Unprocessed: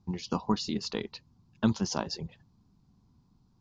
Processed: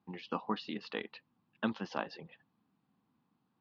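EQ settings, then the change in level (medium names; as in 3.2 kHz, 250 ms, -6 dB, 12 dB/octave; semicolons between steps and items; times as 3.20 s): cabinet simulation 390–2500 Hz, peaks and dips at 390 Hz -8 dB, 610 Hz -5 dB, 970 Hz -9 dB, 1.4 kHz -5 dB, 2.2 kHz -6 dB; tilt shelf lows -3.5 dB, about 1.3 kHz; band-stop 730 Hz, Q 18; +5.0 dB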